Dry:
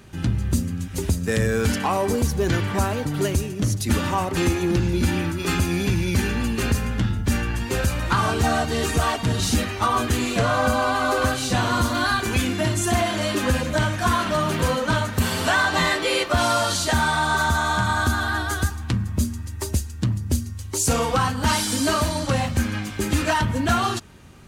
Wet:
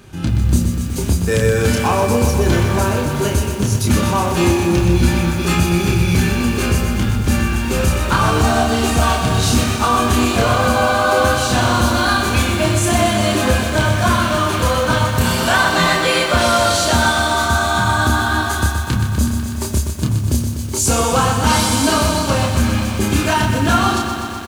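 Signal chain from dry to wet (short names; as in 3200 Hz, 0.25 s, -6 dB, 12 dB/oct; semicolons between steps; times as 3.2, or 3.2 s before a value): notch 1900 Hz, Q 11; doubler 29 ms -3.5 dB; lo-fi delay 0.124 s, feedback 80%, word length 7-bit, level -7.5 dB; gain +3.5 dB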